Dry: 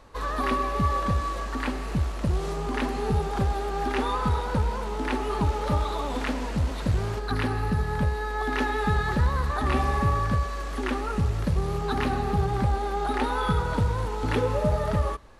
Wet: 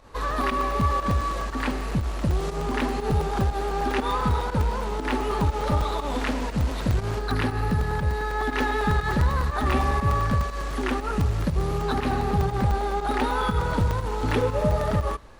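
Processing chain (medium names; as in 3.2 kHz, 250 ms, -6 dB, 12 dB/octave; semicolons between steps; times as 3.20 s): in parallel at -6 dB: saturation -27.5 dBFS, distortion -9 dB; on the sum: volume shaper 120 bpm, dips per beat 1, -10 dB, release 105 ms; crackling interface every 0.10 s, samples 128, zero, from 0.31 s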